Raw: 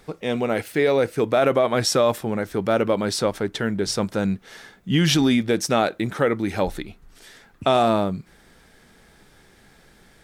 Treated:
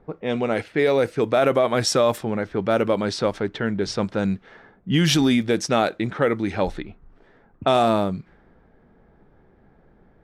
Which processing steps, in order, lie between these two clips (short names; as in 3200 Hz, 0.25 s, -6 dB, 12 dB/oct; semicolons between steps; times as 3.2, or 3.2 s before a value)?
low-pass opened by the level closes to 850 Hz, open at -16 dBFS